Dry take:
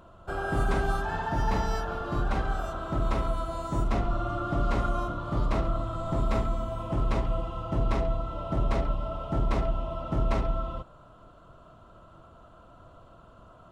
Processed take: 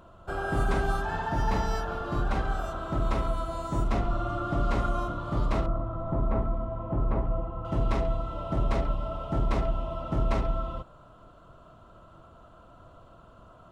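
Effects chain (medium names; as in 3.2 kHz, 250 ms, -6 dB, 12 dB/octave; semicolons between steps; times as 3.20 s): 5.66–7.65 s: low-pass 1.2 kHz 12 dB/octave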